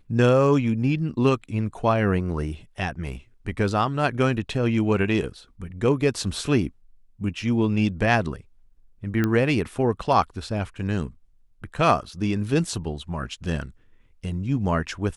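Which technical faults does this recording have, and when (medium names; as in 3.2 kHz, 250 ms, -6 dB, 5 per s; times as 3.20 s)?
9.24 s: pop -11 dBFS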